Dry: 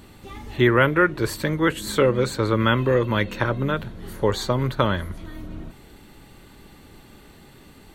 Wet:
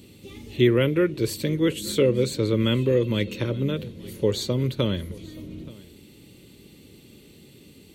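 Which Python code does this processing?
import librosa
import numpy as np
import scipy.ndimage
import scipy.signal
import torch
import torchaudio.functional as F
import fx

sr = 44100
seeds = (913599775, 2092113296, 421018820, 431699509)

p1 = scipy.signal.sosfilt(scipy.signal.butter(2, 87.0, 'highpass', fs=sr, output='sos'), x)
p2 = fx.band_shelf(p1, sr, hz=1100.0, db=-15.5, octaves=1.7)
y = p2 + fx.echo_single(p2, sr, ms=877, db=-23.0, dry=0)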